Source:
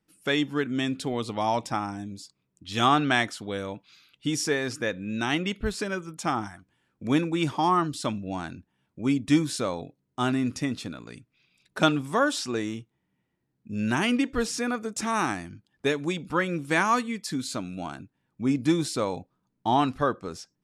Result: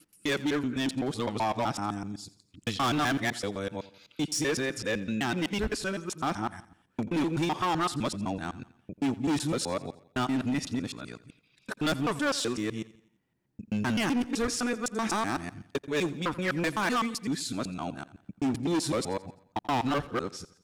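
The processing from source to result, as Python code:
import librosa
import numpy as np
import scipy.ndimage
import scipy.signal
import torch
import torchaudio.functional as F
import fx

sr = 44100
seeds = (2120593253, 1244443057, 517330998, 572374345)

y = fx.local_reverse(x, sr, ms=127.0)
y = np.clip(y, -10.0 ** (-24.0 / 20.0), 10.0 ** (-24.0 / 20.0))
y = fx.echo_feedback(y, sr, ms=86, feedback_pct=46, wet_db=-18.5)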